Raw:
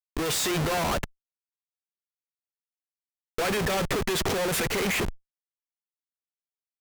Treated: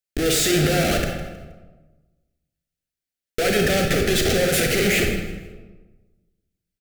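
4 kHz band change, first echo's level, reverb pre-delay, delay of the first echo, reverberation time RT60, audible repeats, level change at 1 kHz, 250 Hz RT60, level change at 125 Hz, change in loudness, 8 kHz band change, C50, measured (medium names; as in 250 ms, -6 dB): +7.0 dB, -14.5 dB, 30 ms, 158 ms, 1.3 s, 1, +1.0 dB, 1.4 s, +8.5 dB, +7.0 dB, +7.0 dB, 3.5 dB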